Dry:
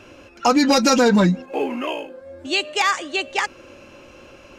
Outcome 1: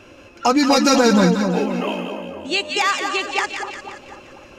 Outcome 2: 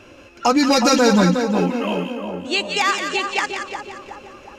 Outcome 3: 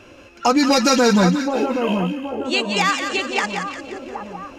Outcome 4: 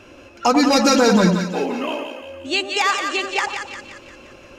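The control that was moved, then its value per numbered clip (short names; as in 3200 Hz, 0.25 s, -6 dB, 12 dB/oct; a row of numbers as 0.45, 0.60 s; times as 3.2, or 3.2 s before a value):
split-band echo, lows: 246, 365, 773, 90 ms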